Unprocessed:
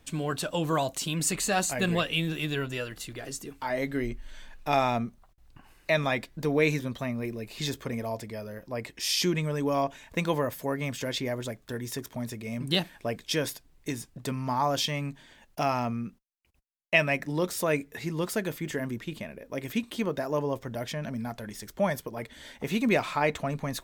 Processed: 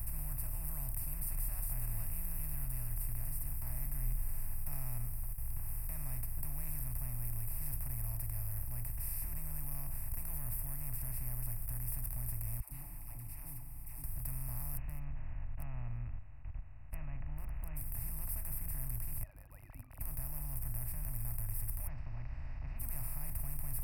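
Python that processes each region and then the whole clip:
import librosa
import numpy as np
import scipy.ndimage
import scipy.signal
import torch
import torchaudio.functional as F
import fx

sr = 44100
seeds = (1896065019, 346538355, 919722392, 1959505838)

y = fx.chain(x, sr, fx.vowel_filter(vowel='u'),
    fx.comb(ms=7.0, depth=0.67),
    fx.dispersion(late='lows', ms=116.0, hz=580.0), at=(12.6, 14.04))
y = fx.chain(y, sr, fx.brickwall_lowpass(high_hz=3000.0),
    fx.dynamic_eq(hz=1600.0, q=4.0, threshold_db=-45.0, ratio=4.0, max_db=-5), at=(14.77, 17.77))
y = fx.chain(y, sr, fx.sine_speech(),
    fx.highpass(hz=600.0, slope=12),
    fx.tilt_eq(slope=-4.5), at=(19.23, 20.01))
y = fx.chain(y, sr, fx.crossing_spikes(level_db=-35.0),
    fx.steep_lowpass(hz=2900.0, slope=72),
    fx.tilt_eq(slope=2.0), at=(21.87, 22.8))
y = fx.bin_compress(y, sr, power=0.2)
y = scipy.signal.sosfilt(scipy.signal.cheby2(4, 40, [180.0, 7300.0], 'bandstop', fs=sr, output='sos'), y)
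y = fx.high_shelf(y, sr, hz=10000.0, db=-7.0)
y = y * librosa.db_to_amplitude(2.5)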